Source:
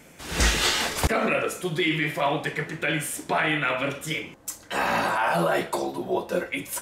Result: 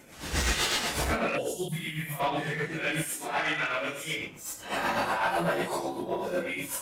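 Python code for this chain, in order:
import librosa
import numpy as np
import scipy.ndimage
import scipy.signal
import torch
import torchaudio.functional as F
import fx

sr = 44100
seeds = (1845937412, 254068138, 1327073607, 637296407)

y = fx.phase_scramble(x, sr, seeds[0], window_ms=200)
y = fx.low_shelf(y, sr, hz=260.0, db=-12.0, at=(3.02, 4.17))
y = fx.spec_box(y, sr, start_s=1.38, length_s=0.34, low_hz=1000.0, high_hz=2700.0, gain_db=-29)
y = fx.curve_eq(y, sr, hz=(230.0, 370.0, 610.0, 4900.0, 11000.0), db=(0, -23, -9, -8, 10), at=(1.68, 2.2))
y = 10.0 ** (-20.0 / 20.0) * np.tanh(y / 10.0 ** (-20.0 / 20.0))
y = y * (1.0 - 0.46 / 2.0 + 0.46 / 2.0 * np.cos(2.0 * np.pi * 8.0 * (np.arange(len(y)) / sr)))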